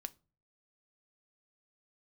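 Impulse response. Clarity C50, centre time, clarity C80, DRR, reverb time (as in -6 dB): 24.0 dB, 2 ms, 31.0 dB, 11.0 dB, not exponential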